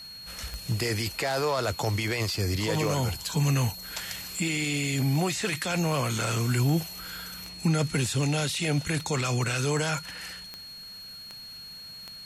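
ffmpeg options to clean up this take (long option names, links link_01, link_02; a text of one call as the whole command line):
ffmpeg -i in.wav -af "adeclick=threshold=4,bandreject=frequency=4300:width=30" out.wav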